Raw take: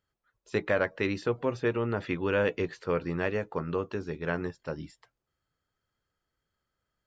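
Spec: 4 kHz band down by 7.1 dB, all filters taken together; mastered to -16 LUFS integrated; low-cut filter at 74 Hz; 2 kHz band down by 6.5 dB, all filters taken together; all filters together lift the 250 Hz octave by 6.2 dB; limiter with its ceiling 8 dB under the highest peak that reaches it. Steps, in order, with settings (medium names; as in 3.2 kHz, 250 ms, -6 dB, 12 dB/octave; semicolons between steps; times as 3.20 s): high-pass 74 Hz; peaking EQ 250 Hz +8.5 dB; peaking EQ 2 kHz -7.5 dB; peaking EQ 4 kHz -6.5 dB; trim +16 dB; peak limiter -4 dBFS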